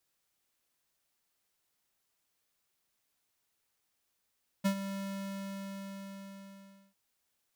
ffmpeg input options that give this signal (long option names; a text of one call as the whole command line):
ffmpeg -f lavfi -i "aevalsrc='0.0473*(2*lt(mod(196*t,1),0.5)-1)':duration=2.3:sample_rate=44100,afade=type=in:duration=0.019,afade=type=out:start_time=0.019:duration=0.083:silence=0.266,afade=type=out:start_time=0.31:duration=1.99" out.wav